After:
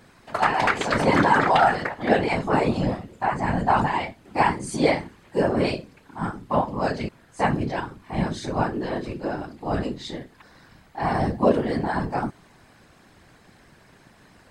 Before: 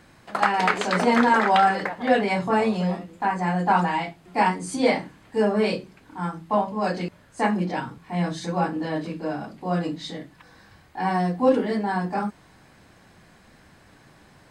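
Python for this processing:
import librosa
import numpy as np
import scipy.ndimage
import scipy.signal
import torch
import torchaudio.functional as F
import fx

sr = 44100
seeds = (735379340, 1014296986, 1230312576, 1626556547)

y = fx.whisperise(x, sr, seeds[0])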